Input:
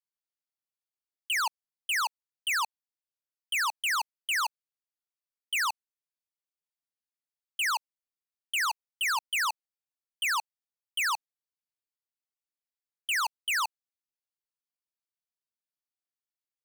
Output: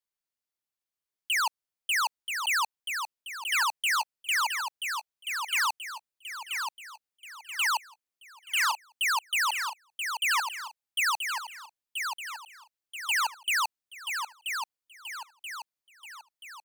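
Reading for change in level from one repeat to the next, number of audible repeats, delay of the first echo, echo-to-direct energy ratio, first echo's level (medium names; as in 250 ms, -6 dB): -6.5 dB, 5, 981 ms, -5.0 dB, -6.0 dB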